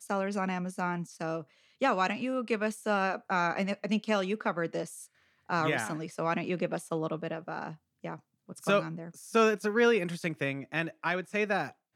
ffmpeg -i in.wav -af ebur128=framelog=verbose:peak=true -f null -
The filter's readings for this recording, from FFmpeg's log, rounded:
Integrated loudness:
  I:         -31.0 LUFS
  Threshold: -41.5 LUFS
Loudness range:
  LRA:         4.2 LU
  Threshold: -51.5 LUFS
  LRA low:   -33.9 LUFS
  LRA high:  -29.7 LUFS
True peak:
  Peak:      -13.4 dBFS